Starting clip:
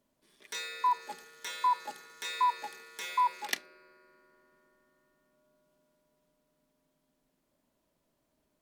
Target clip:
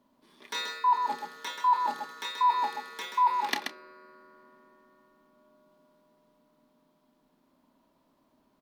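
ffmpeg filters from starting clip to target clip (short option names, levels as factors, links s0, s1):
-af "equalizer=f=250:t=o:w=1:g=11,equalizer=f=1000:t=o:w=1:g=12,equalizer=f=4000:t=o:w=1:g=5,equalizer=f=8000:t=o:w=1:g=-5,areverse,acompressor=threshold=0.0708:ratio=6,areverse,aecho=1:1:29.15|131.2:0.316|0.501"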